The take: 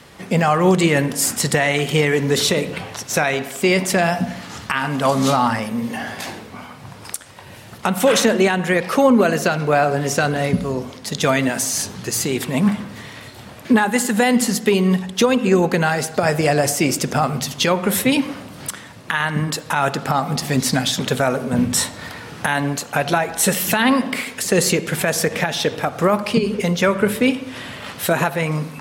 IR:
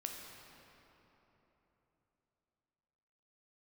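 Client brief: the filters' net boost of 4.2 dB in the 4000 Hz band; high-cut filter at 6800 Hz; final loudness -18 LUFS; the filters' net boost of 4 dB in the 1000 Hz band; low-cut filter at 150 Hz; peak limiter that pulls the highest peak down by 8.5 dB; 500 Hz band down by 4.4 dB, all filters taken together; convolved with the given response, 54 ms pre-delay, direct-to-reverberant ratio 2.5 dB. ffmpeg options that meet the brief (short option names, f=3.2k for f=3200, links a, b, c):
-filter_complex "[0:a]highpass=150,lowpass=6.8k,equalizer=f=500:t=o:g=-8,equalizer=f=1k:t=o:g=8,equalizer=f=4k:t=o:g=5.5,alimiter=limit=-10dB:level=0:latency=1,asplit=2[a][b];[1:a]atrim=start_sample=2205,adelay=54[c];[b][c]afir=irnorm=-1:irlink=0,volume=-1.5dB[d];[a][d]amix=inputs=2:normalize=0,volume=1.5dB"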